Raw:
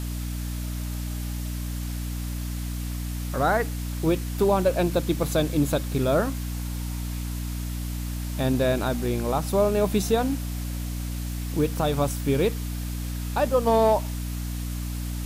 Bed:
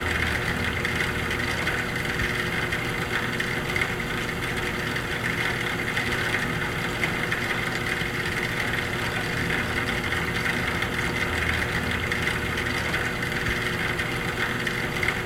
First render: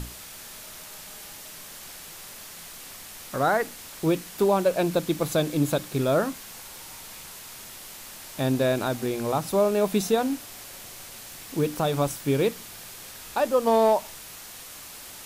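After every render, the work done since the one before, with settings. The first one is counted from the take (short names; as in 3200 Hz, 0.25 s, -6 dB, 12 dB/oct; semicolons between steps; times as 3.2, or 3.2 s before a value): notches 60/120/180/240/300 Hz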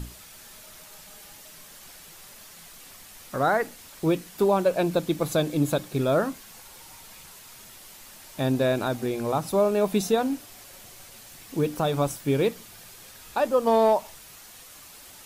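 denoiser 6 dB, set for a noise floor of -43 dBFS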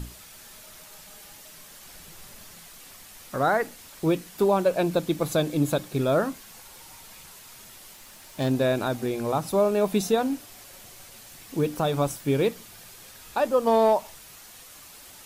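1.91–2.59 low shelf 270 Hz +8 dB; 7.93–8.51 self-modulated delay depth 0.11 ms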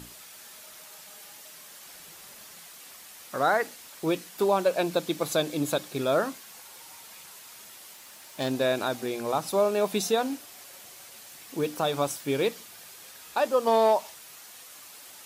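HPF 390 Hz 6 dB/oct; dynamic EQ 4600 Hz, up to +3 dB, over -44 dBFS, Q 0.8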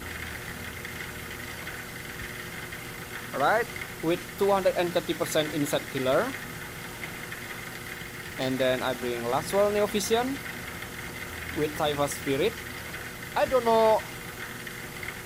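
add bed -12 dB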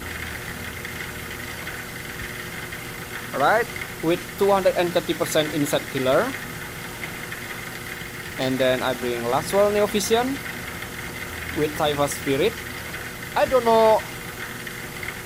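gain +5 dB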